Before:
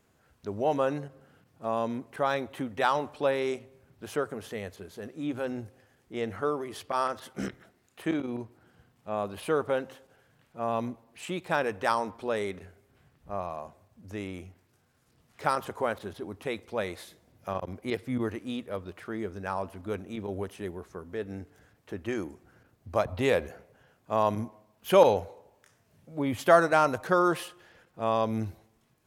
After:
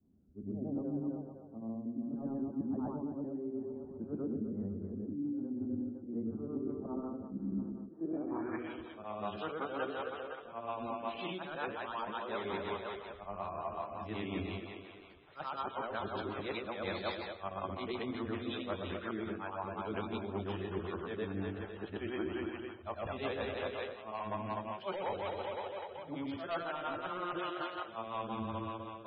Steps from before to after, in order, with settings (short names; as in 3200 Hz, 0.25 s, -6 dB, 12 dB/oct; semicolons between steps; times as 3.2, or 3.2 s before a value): short-time reversal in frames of 0.248 s; graphic EQ 125/250/500/2000/4000/8000 Hz -8/-4/-10/-10/-11/-8 dB; soft clip -27.5 dBFS, distortion -15 dB; vocal rider within 4 dB 2 s; on a send: split-band echo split 360 Hz, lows 0.133 s, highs 0.254 s, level -7.5 dB; on the sum: low-pass sweep 250 Hz -> 3800 Hz, 7.86–8.81; low shelf 220 Hz -7.5 dB; reverse; compressor 16:1, threshold -48 dBFS, peak gain reduction 17.5 dB; reverse; notches 60/120/180/240/300/360/420/480/540 Hz; rotary speaker horn 0.65 Hz, later 5.5 Hz, at 4.08; gain +16.5 dB; MP3 16 kbps 22050 Hz